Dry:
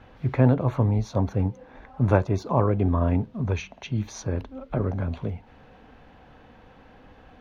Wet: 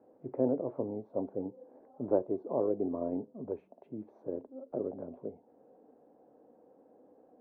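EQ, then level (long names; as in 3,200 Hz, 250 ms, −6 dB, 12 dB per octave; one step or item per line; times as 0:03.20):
flat-topped band-pass 440 Hz, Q 1.2
low-shelf EQ 420 Hz +4 dB
−6.0 dB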